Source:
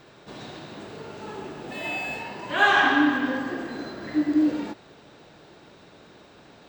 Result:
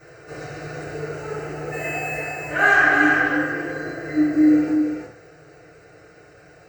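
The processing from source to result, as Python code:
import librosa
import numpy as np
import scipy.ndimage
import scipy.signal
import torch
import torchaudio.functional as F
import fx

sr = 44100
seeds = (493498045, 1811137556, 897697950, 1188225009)

y = fx.rider(x, sr, range_db=4, speed_s=2.0)
y = fx.fixed_phaser(y, sr, hz=940.0, stages=6)
y = y + 10.0 ** (-4.5 / 20.0) * np.pad(y, (int(331 * sr / 1000.0), 0))[:len(y)]
y = fx.rev_fdn(y, sr, rt60_s=0.45, lf_ratio=1.05, hf_ratio=0.9, size_ms=20.0, drr_db=-9.5)
y = y * 10.0 ** (-4.5 / 20.0)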